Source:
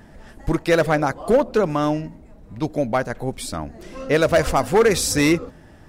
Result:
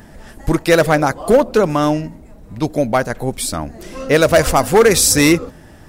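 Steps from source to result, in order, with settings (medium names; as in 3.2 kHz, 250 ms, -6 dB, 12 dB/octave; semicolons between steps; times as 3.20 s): treble shelf 6.9 kHz +9 dB; trim +5 dB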